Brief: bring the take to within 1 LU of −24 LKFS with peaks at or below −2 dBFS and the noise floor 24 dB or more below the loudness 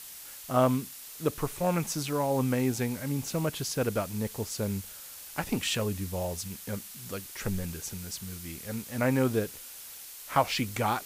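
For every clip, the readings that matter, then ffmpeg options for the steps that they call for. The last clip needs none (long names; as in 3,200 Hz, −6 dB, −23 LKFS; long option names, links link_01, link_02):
background noise floor −45 dBFS; target noise floor −55 dBFS; integrated loudness −31.0 LKFS; sample peak −11.0 dBFS; target loudness −24.0 LKFS
→ -af "afftdn=noise_reduction=10:noise_floor=-45"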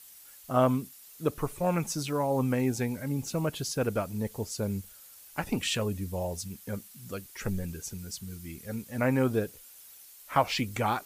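background noise floor −52 dBFS; target noise floor −56 dBFS
→ -af "afftdn=noise_reduction=6:noise_floor=-52"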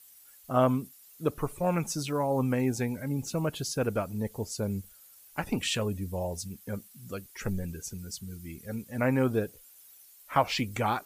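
background noise floor −55 dBFS; integrated loudness −31.0 LKFS; sample peak −11.0 dBFS; target loudness −24.0 LKFS
→ -af "volume=7dB"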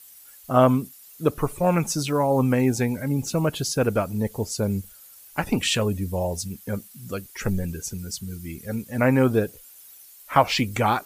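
integrated loudness −24.0 LKFS; sample peak −4.0 dBFS; background noise floor −48 dBFS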